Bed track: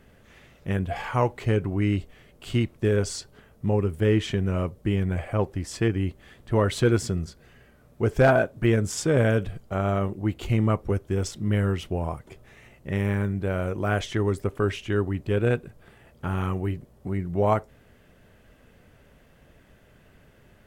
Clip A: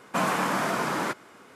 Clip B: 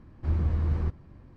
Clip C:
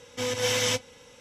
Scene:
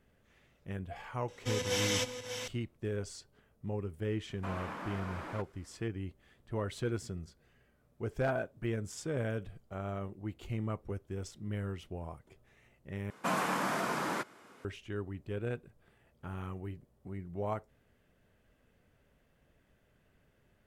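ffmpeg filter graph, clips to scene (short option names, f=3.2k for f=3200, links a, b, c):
-filter_complex "[1:a]asplit=2[a][b];[0:a]volume=-14dB[c];[3:a]aecho=1:1:589:0.398[d];[a]acrossover=split=3900[e][f];[f]acompressor=threshold=-51dB:ratio=4:attack=1:release=60[g];[e][g]amix=inputs=2:normalize=0[h];[c]asplit=2[i][j];[i]atrim=end=13.104[k];[b]atrim=end=1.55,asetpts=PTS-STARTPTS,volume=-6.5dB[l];[j]atrim=start=14.646[m];[d]atrim=end=1.2,asetpts=PTS-STARTPTS,volume=-6.5dB,afade=t=in:d=0.004:c=hsin,afade=t=out:st=1.196:d=0.004:c=hsin,adelay=1280[n];[h]atrim=end=1.55,asetpts=PTS-STARTPTS,volume=-16dB,afade=t=in:d=0.004:c=hsin,afade=t=out:st=1.546:d=0.004:c=hsin,adelay=189189S[o];[k][l]acrossfade=d=0.004:c1=hsin:c2=hsin[p];[p][m]acrossfade=d=0.004:c1=hsin:c2=hsin[q];[q][n][o]amix=inputs=3:normalize=0"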